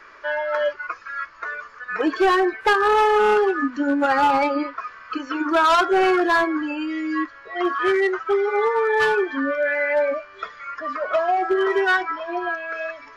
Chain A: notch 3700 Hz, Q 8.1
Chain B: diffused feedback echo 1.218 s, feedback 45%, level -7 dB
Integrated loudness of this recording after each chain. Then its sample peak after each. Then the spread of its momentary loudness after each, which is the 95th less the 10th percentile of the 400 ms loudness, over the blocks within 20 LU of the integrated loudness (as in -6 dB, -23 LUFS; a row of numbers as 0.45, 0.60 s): -21.0, -20.5 LUFS; -11.5, -7.0 dBFS; 14, 10 LU